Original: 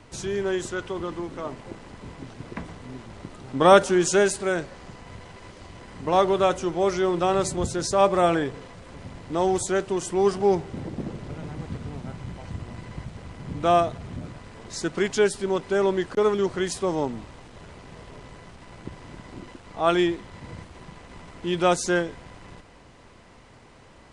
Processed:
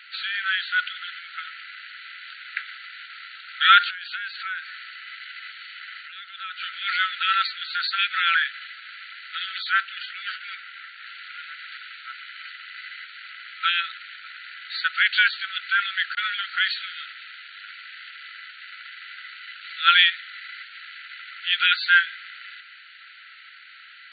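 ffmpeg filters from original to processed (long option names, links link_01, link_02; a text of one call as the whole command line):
ffmpeg -i in.wav -filter_complex "[0:a]asettb=1/sr,asplit=3[link_01][link_02][link_03];[link_01]atrim=end=3.904[link_04];[link_02]atrim=start=3.9:end=6.61,asetpts=PTS-STARTPTS,afade=type=in:duration=0.004:curve=qsin,afade=type=out:start_time=2.706:duration=0.004:curve=qsin,acompressor=threshold=-32dB:ratio=8:attack=3.2:release=140:knee=1:detection=peak[link_05];[link_03]atrim=start=6.606[link_06];[link_04][link_05]acrossfade=duration=0.004:curve1=hsin:curve2=qsin[link_07];[link_07][link_06]acrossfade=duration=0.004:curve1=qsin:curve2=hsin,asettb=1/sr,asplit=3[link_08][link_09][link_10];[link_08]atrim=end=9.704[link_11];[link_09]atrim=start=9.7:end=11.03,asetpts=PTS-STARTPTS,afade=type=in:duration=0.004:curve=qsin,afade=type=out:start_time=1.326:duration=0.004:curve=qsin,highshelf=frequency=5200:gain=-10[link_12];[link_10]atrim=start=11.026[link_13];[link_11][link_12]acrossfade=duration=0.004:curve1=hsin:curve2=qsin[link_14];[link_14][link_13]acrossfade=duration=0.004:curve1=qsin:curve2=hsin,asettb=1/sr,asplit=3[link_15][link_16][link_17];[link_15]atrim=end=19.614[link_18];[link_16]atrim=start=19.61:end=20.1,asetpts=PTS-STARTPTS,afade=type=in:duration=0.004:curve=qsin,afade=type=out:start_time=0.486:duration=0.004:curve=qsin,highshelf=frequency=3600:gain=9[link_19];[link_17]atrim=start=20.096[link_20];[link_18][link_19]acrossfade=duration=0.004:curve1=hsin:curve2=qsin[link_21];[link_21][link_20]acrossfade=duration=0.004:curve1=qsin:curve2=hsin,afftfilt=real='re*between(b*sr/4096,1300,4600)':imag='im*between(b*sr/4096,1300,4600)':win_size=4096:overlap=0.75,alimiter=level_in=15.5dB:limit=-1dB:release=50:level=0:latency=1,volume=-2.5dB" out.wav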